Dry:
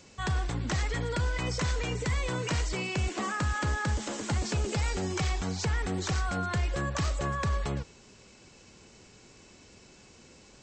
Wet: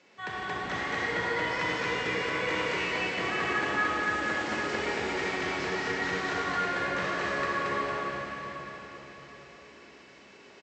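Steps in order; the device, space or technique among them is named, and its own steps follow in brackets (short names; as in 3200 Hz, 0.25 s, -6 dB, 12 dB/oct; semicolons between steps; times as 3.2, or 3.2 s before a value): station announcement (BPF 300–3600 Hz; bell 2000 Hz +6 dB 0.57 oct; loudspeakers at several distances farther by 37 m -10 dB, 54 m -11 dB, 78 m -1 dB; reverb RT60 4.8 s, pre-delay 14 ms, DRR -5 dB); gain -5 dB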